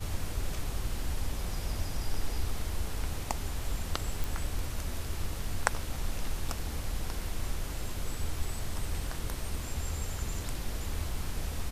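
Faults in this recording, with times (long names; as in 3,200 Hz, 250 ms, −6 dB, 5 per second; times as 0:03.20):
0:04.24: click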